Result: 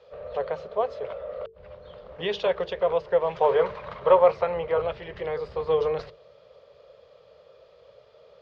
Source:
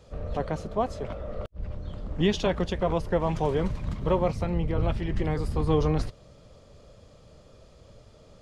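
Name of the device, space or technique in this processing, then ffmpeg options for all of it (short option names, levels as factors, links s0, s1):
guitar cabinet: -filter_complex "[0:a]highpass=80,equalizer=f=96:t=q:w=4:g=-7,equalizer=f=330:t=q:w=4:g=-7,equalizer=f=760:t=q:w=4:g=-4,lowpass=f=4300:w=0.5412,lowpass=f=4300:w=1.3066,lowshelf=f=350:t=q:w=3:g=-10,bandreject=f=50:t=h:w=6,bandreject=f=100:t=h:w=6,bandreject=f=150:t=h:w=6,bandreject=f=200:t=h:w=6,bandreject=f=250:t=h:w=6,bandreject=f=300:t=h:w=6,bandreject=f=350:t=h:w=6,bandreject=f=400:t=h:w=6,bandreject=f=450:t=h:w=6,asettb=1/sr,asplit=3[s0][s1][s2];[s0]atrim=end=3.414[s3];[s1]atrim=start=3.41:end=4.82,asetpts=PTS-STARTPTS,afade=t=in:d=0.004:c=qsin,afade=t=out:st=1.406:d=0.004:c=qsin,equalizer=f=1100:w=0.6:g=9[s4];[s2]atrim=start=4.816[s5];[s3][s4]acrossfade=d=0.004:c1=hsin:c2=qsin[s6];[s6][s5]acrossfade=d=0.004:c1=qsin:c2=hsin"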